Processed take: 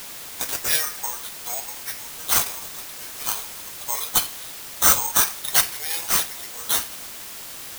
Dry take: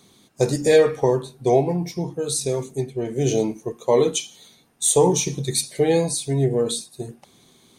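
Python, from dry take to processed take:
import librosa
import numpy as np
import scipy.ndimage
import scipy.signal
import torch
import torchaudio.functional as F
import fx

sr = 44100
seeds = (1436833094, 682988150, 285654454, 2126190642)

y = scipy.signal.sosfilt(scipy.signal.butter(4, 1100.0, 'highpass', fs=sr, output='sos'), x)
y = (np.kron(y[::6], np.eye(6)[0]) * 6)[:len(y)]
y = fx.quant_dither(y, sr, seeds[0], bits=6, dither='triangular')
y = F.gain(torch.from_numpy(y), -1.0).numpy()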